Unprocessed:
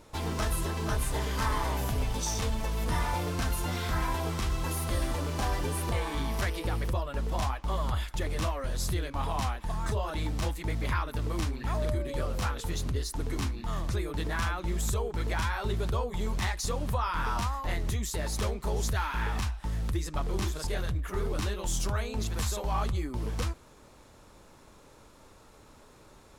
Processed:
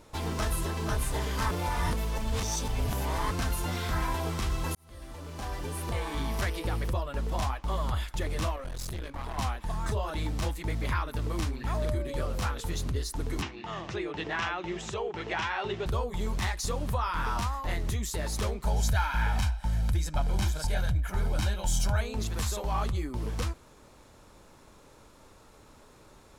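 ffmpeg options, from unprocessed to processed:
-filter_complex "[0:a]asettb=1/sr,asplit=3[a][b][c];[a]atrim=end=8.564[d];[b]atrim=start=8.56:end=9.38,asetpts=PTS-STARTPTS,afade=t=in:d=0.004:c=qsin,afade=t=out:st=0.816:d=0.004:c=qsin,aeval=exprs='(tanh(44.7*val(0)+0.55)-tanh(0.55))/44.7':c=same[e];[c]atrim=start=9.376[f];[d][e]acrossfade=d=0.004:c1=hsin:c2=qsin[g];[g][f]acrossfade=d=0.004:c1=qsin:c2=hsin,asettb=1/sr,asplit=3[h][i][j];[h]atrim=end=13.424[k];[i]atrim=start=13.42:end=15.86,asetpts=PTS-STARTPTS,afade=t=in:d=0.004:c=qsin,afade=t=out:st=2.436:d=0.004:c=qsin,highpass=160,equalizer=f=250:t=q:w=4:g=-9,equalizer=f=360:t=q:w=4:g=5,equalizer=f=770:t=q:w=4:g=5,equalizer=f=1.9k:t=q:w=4:g=4,equalizer=f=2.8k:t=q:w=4:g=8,equalizer=f=4.4k:t=q:w=4:g=-4,lowpass=f=6k:w=0.5412,lowpass=f=6k:w=1.3066[l];[j]atrim=start=15.856[m];[k][l]acrossfade=d=0.004:c1=hsin:c2=qsin[n];[n][m]acrossfade=d=0.004:c1=qsin:c2=hsin,asettb=1/sr,asplit=3[o][p][q];[o]atrim=end=18.654[r];[p]atrim=start=18.65:end=22.01,asetpts=PTS-STARTPTS,afade=t=in:d=0.004:c=qsin,afade=t=out:st=3.356:d=0.004:c=qsin,aecho=1:1:1.3:0.65,atrim=end_sample=148176[s];[q]atrim=start=22.006[t];[r][s]acrossfade=d=0.004:c1=hsin:c2=qsin[u];[u][t]acrossfade=d=0.004:c1=qsin:c2=hsin,asplit=4[v][w][x][y];[v]atrim=end=1.512[z];[w]atrim=start=1.508:end=3.312,asetpts=PTS-STARTPTS,areverse[aa];[x]atrim=start=3.308:end=4.75,asetpts=PTS-STARTPTS,afade=t=out:st=1.438:d=0.004:c=hsin[ab];[y]atrim=start=4.75,asetpts=PTS-STARTPTS,afade=t=in:d=1.52[ac];[z][aa]acrossfade=d=0.004:c1=hsin:c2=hsin[ad];[ab][ac]concat=n=2:v=0:a=1[ae];[ad][ae]acrossfade=d=0.004:c1=hsin:c2=hsin"

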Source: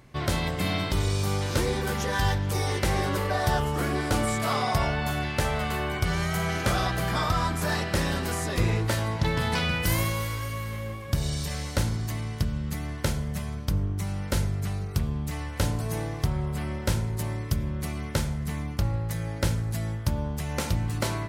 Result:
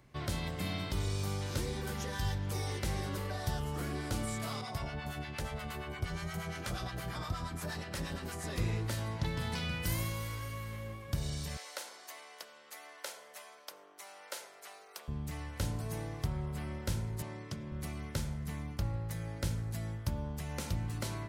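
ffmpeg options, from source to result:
-filter_complex "[0:a]asettb=1/sr,asplit=3[a][b][c];[a]atrim=end=4.614[d];[b]atrim=start=4.61:end=8.44,asetpts=PTS-STARTPTS,afade=t=in:d=0.004:c=qsin,afade=t=out:st=3.826:d=0.004:c=qsin,acrossover=split=760[e][f];[e]aeval=exprs='val(0)*(1-0.7/2+0.7/2*cos(2*PI*8.5*n/s))':c=same[g];[f]aeval=exprs='val(0)*(1-0.7/2-0.7/2*cos(2*PI*8.5*n/s))':c=same[h];[g][h]amix=inputs=2:normalize=0[i];[c]atrim=start=8.436[j];[d][i]acrossfade=d=0.004:c1=hsin:c2=qsin[k];[k][j]acrossfade=d=0.004:c1=qsin:c2=hsin,asettb=1/sr,asplit=3[l][m][n];[l]atrim=end=11.574[o];[m]atrim=start=11.57:end=15.08,asetpts=PTS-STARTPTS,afade=t=in:d=0.004:c=qsin,afade=t=out:st=3.506:d=0.004:c=qsin,highpass=f=520:w=0.5412,highpass=f=520:w=1.3066[p];[n]atrim=start=15.076[q];[o][p]acrossfade=d=0.004:c1=hsin:c2=qsin[r];[r][q]acrossfade=d=0.004:c1=qsin:c2=hsin,asettb=1/sr,asplit=3[s][t][u];[s]atrim=end=17.224[v];[t]atrim=start=17.22:end=17.72,asetpts=PTS-STARTPTS,afade=t=in:d=0.004:c=qsin,afade=t=out:st=0.496:d=0.004:c=qsin,highpass=160,lowpass=7k[w];[u]atrim=start=17.716[x];[v][w]acrossfade=d=0.004:c1=hsin:c2=qsin[y];[y][x]acrossfade=d=0.004:c1=qsin:c2=hsin,acrossover=split=290|3000[z][aa][ab];[aa]acompressor=threshold=-32dB:ratio=6[ac];[z][ac][ab]amix=inputs=3:normalize=0,volume=-8.5dB"

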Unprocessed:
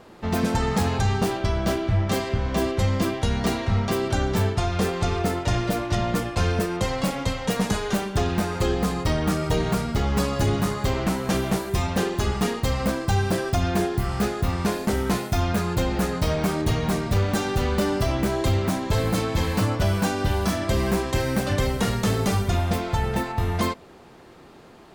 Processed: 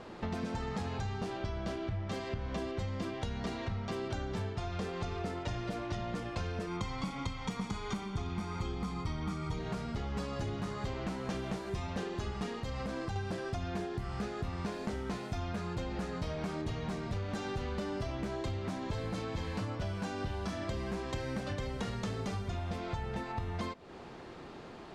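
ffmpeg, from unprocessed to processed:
-filter_complex "[0:a]asettb=1/sr,asplit=3[a][b][c];[a]atrim=end=6.674[d];[b]atrim=start=6.67:end=9.59,asetpts=PTS-STARTPTS,afade=t=in:d=0.004:c=qsin,afade=t=out:st=2.916:d=0.004:c=qsin,aecho=1:1:0.9:0.64,atrim=end_sample=128772[e];[c]atrim=start=9.586[f];[d][e]acrossfade=d=0.004:c1=hsin:c2=qsin[g];[g][f]acrossfade=d=0.004:c1=qsin:c2=hsin,asettb=1/sr,asplit=3[h][i][j];[h]atrim=end=12.584[k];[i]atrim=start=12.58:end=13.16,asetpts=PTS-STARTPTS,afade=t=in:d=0.004:c=qsin,afade=t=out:st=0.576:d=0.004:c=qsin,acompressor=threshold=-24dB:ratio=6:attack=3.2:release=140:knee=1:detection=peak[l];[j]atrim=start=13.156[m];[k][l]acrossfade=d=0.004:c1=hsin:c2=qsin[n];[n][m]acrossfade=d=0.004:c1=qsin:c2=hsin,acompressor=threshold=-35dB:ratio=6,lowpass=6.1k"

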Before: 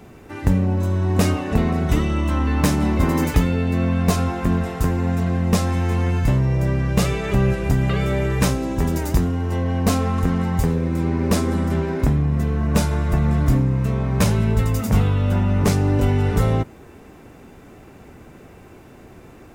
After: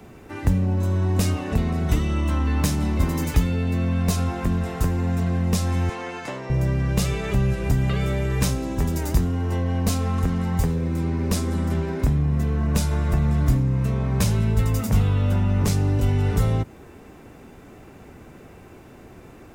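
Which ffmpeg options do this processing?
-filter_complex "[0:a]asettb=1/sr,asplit=3[a][b][c];[a]atrim=end=5.894[d];[b]atrim=start=5.89:end=6.5,asetpts=PTS-STARTPTS,afade=t=in:d=0.004:c=qsin,afade=t=out:st=0.606:d=0.004:c=qsin,highpass=450,lowpass=7.6k[e];[c]atrim=start=6.496[f];[d][e]acrossfade=d=0.004:c1=hsin:c2=qsin[g];[g][f]acrossfade=d=0.004:c1=qsin:c2=hsin,acrossover=split=160|3000[h][i][j];[i]acompressor=threshold=-25dB:ratio=6[k];[h][k][j]amix=inputs=3:normalize=0,volume=-1dB"

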